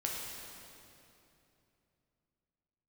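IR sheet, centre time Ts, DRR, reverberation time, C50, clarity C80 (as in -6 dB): 129 ms, -3.0 dB, 2.9 s, -0.5 dB, 1.0 dB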